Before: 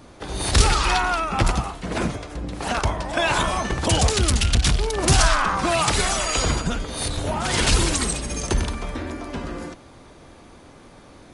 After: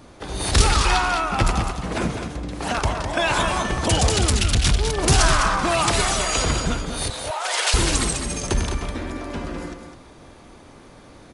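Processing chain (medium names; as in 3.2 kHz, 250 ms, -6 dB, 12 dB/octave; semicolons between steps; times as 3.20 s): 7.10–7.74 s: inverse Chebyshev high-pass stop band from 260 Hz, stop band 40 dB; delay 205 ms -7.5 dB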